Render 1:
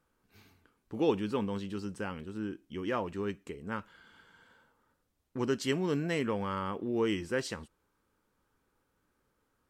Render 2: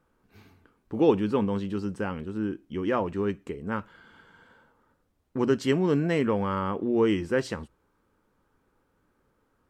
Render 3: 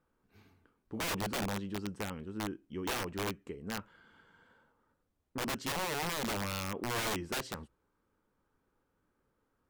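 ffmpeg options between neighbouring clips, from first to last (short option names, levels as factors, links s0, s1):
-af "highshelf=f=2300:g=-9.5,bandreject=f=60:t=h:w=6,bandreject=f=120:t=h:w=6,volume=2.37"
-af "aeval=exprs='(mod(11.9*val(0)+1,2)-1)/11.9':c=same,volume=0.398"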